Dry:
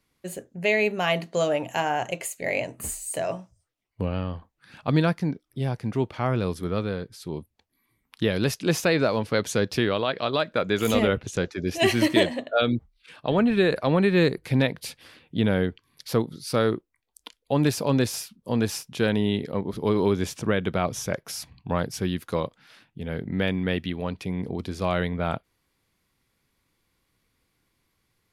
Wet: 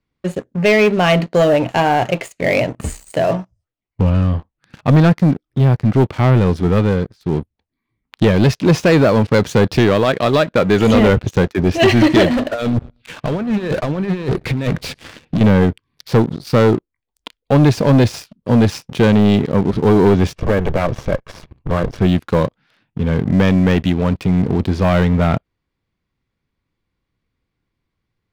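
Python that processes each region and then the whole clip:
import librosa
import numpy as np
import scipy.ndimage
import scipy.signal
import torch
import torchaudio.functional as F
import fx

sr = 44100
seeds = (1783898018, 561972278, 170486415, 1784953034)

y = fx.chain(x, sr, fx.over_compress(threshold_db=-27.0, ratio=-0.5),
    fx.overload_stage(gain_db=29.0),
    fx.echo_feedback(ms=116, feedback_pct=40, wet_db=-22), at=(12.3, 15.41))
y = fx.chain(y, sr, fx.lower_of_two(delay_ms=1.8),
    fx.lowpass(hz=2300.0, slope=6), at=(20.35, 22.01))
y = scipy.signal.sosfilt(scipy.signal.bessel(2, 3700.0, 'lowpass', norm='mag', fs=sr, output='sos'), y)
y = fx.low_shelf(y, sr, hz=290.0, db=7.0)
y = fx.leveller(y, sr, passes=3)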